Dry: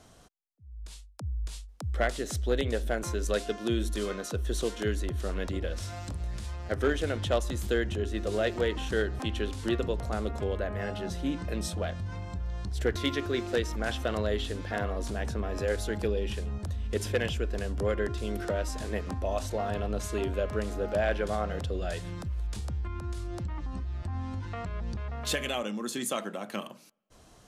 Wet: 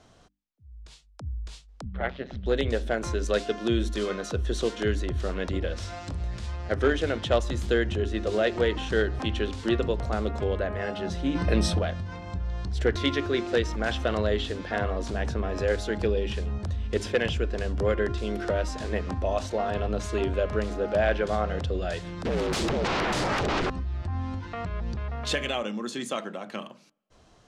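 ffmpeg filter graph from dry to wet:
ffmpeg -i in.wav -filter_complex "[0:a]asettb=1/sr,asplit=3[link_01][link_02][link_03];[link_01]atrim=end=1.844[link_04];[link_02]atrim=start=1.84:end=2.46,asetpts=PTS-STARTPTS,afade=type=in:duration=0.004:curve=qsin,afade=type=out:start_time=0.616:duration=0.004:curve=qsin,lowpass=frequency=3400:width=0.5412,lowpass=frequency=3400:width=1.3066,tremolo=f=130:d=0.919[link_05];[link_03]atrim=start=2.456[link_06];[link_04][link_05]acrossfade=duration=0.004:curve1=hsin:curve2=qsin[link_07];[link_07][link_06]acrossfade=duration=0.004:curve1=qsin:curve2=hsin,asettb=1/sr,asplit=3[link_08][link_09][link_10];[link_08]atrim=end=11.354[link_11];[link_09]atrim=start=11.35:end=11.79,asetpts=PTS-STARTPTS,afade=type=in:duration=0.004:curve=qsin,afade=type=out:start_time=0.436:duration=0.004:curve=qsin,acontrast=57,bandreject=frequency=6900:width=7[link_12];[link_10]atrim=start=11.786[link_13];[link_11][link_12]acrossfade=duration=0.004:curve1=hsin:curve2=qsin[link_14];[link_14][link_13]acrossfade=duration=0.004:curve1=qsin:curve2=hsin,asettb=1/sr,asplit=3[link_15][link_16][link_17];[link_15]atrim=end=22.254[link_18];[link_16]atrim=start=22.25:end=23.7,asetpts=PTS-STARTPTS,afade=type=in:duration=0.004:curve=qsin,afade=type=out:start_time=1.446:duration=0.004:curve=qsin,equalizer=frequency=140:width_type=o:width=0.95:gain=-13,aeval=exprs='0.0447*sin(PI/2*7.94*val(0)/0.0447)':channel_layout=same[link_19];[link_17]atrim=start=23.696[link_20];[link_18][link_19]acrossfade=duration=0.004:curve1=hsin:curve2=qsin[link_21];[link_21][link_20]acrossfade=duration=0.004:curve1=qsin:curve2=hsin,lowpass=5800,bandreject=frequency=50:width_type=h:width=6,bandreject=frequency=100:width_type=h:width=6,bandreject=frequency=150:width_type=h:width=6,bandreject=frequency=200:width_type=h:width=6,bandreject=frequency=250:width_type=h:width=6,bandreject=frequency=300:width_type=h:width=6,dynaudnorm=framelen=390:gausssize=11:maxgain=4dB" out.wav

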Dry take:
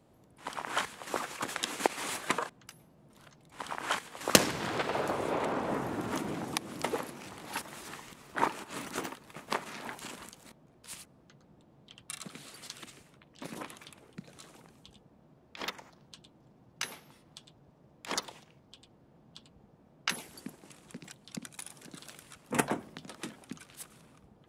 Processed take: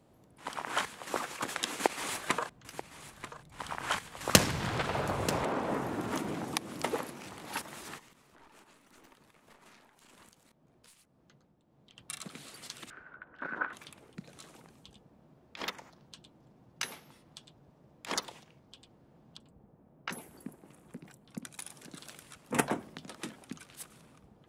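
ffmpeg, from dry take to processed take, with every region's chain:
ffmpeg -i in.wav -filter_complex "[0:a]asettb=1/sr,asplit=3[link_01][link_02][link_03];[link_01]atrim=end=1.714[link_04];[link_02]atrim=start=1.71:end=5.44,asetpts=PTS-STARTPTS,afade=type=in:duration=0.004:curve=qsin,afade=type=out:start_time=3.726:duration=0.004:curve=qsin,asubboost=boost=6:cutoff=140,aecho=1:1:936:0.2,atrim=end_sample=164493[link_05];[link_03]atrim=start=5.436[link_06];[link_04][link_05]acrossfade=duration=0.004:curve1=hsin:curve2=qsin[link_07];[link_07][link_06]acrossfade=duration=0.004:curve1=qsin:curve2=hsin,asettb=1/sr,asplit=3[link_08][link_09][link_10];[link_08]atrim=end=7.984[link_11];[link_09]atrim=start=7.98:end=11.97,asetpts=PTS-STARTPTS,afade=type=in:duration=0.004:curve=qsin,afade=type=out:start_time=3.986:duration=0.004:curve=qsin,aeval=exprs='(tanh(35.5*val(0)+0.7)-tanh(0.7))/35.5':channel_layout=same,acompressor=threshold=-52dB:ratio=20:attack=3.2:release=140:knee=1:detection=peak,tremolo=f=1.8:d=0.51[link_12];[link_10]atrim=start=11.966[link_13];[link_11][link_12]acrossfade=duration=0.004:curve1=hsin:curve2=qsin[link_14];[link_14][link_13]acrossfade=duration=0.004:curve1=qsin:curve2=hsin,asettb=1/sr,asplit=3[link_15][link_16][link_17];[link_15]atrim=end=12.904[link_18];[link_16]atrim=start=12.9:end=13.73,asetpts=PTS-STARTPTS,afade=type=in:duration=0.004:curve=qsin,afade=type=out:start_time=0.826:duration=0.004:curve=qsin,equalizer=frequency=140:width_type=o:width=1.7:gain=-8,acompressor=mode=upward:threshold=-54dB:ratio=2.5:attack=3.2:release=140:knee=2.83:detection=peak,lowpass=frequency=1500:width_type=q:width=15[link_19];[link_17]atrim=start=13.726[link_20];[link_18][link_19]acrossfade=duration=0.004:curve1=hsin:curve2=qsin[link_21];[link_21][link_20]acrossfade=duration=0.004:curve1=qsin:curve2=hsin,asettb=1/sr,asplit=3[link_22][link_23][link_24];[link_22]atrim=end=19.374[link_25];[link_23]atrim=start=19.37:end=21.45,asetpts=PTS-STARTPTS,afade=type=in:duration=0.004:curve=qsin,afade=type=out:start_time=2.076:duration=0.004:curve=qsin,equalizer=frequency=4500:width=0.46:gain=-11.5,acrossover=split=5800[link_26][link_27];[link_27]adelay=30[link_28];[link_26][link_28]amix=inputs=2:normalize=0,atrim=end_sample=91728[link_29];[link_24]atrim=start=21.446[link_30];[link_25][link_29]acrossfade=duration=0.004:curve1=hsin:curve2=qsin[link_31];[link_31][link_30]acrossfade=duration=0.004:curve1=qsin:curve2=hsin" out.wav

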